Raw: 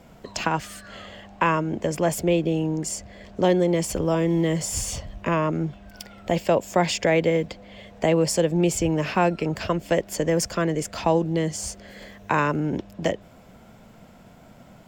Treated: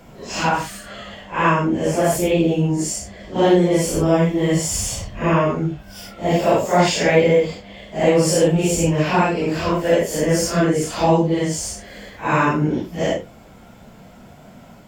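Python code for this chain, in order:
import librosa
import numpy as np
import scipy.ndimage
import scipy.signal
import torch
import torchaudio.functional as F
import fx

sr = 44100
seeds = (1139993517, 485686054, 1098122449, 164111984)

y = fx.phase_scramble(x, sr, seeds[0], window_ms=200)
y = F.gain(torch.from_numpy(y), 5.5).numpy()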